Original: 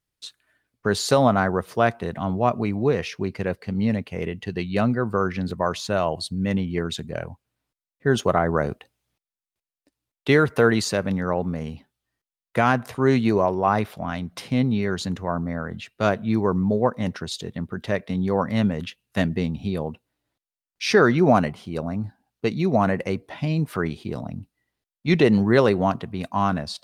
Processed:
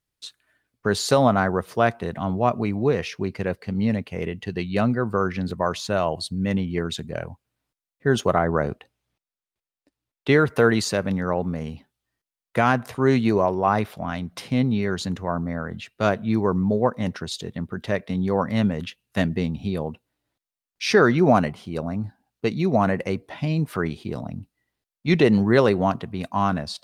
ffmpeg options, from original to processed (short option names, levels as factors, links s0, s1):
-filter_complex "[0:a]asettb=1/sr,asplit=3[s0][s1][s2];[s0]atrim=end=8.454[s3];[s1]atrim=start=8.45:end=10.47,asetpts=PTS-STARTPTS,afade=t=in:d=0.004:c=qsin,afade=t=out:st=2.016:d=0.004:c=qsin,highshelf=f=5600:g=-7[s4];[s2]atrim=start=10.466[s5];[s3][s4]acrossfade=d=0.004:c1=hsin:c2=qsin[s6];[s6][s5]acrossfade=d=0.004:c1=qsin:c2=hsin"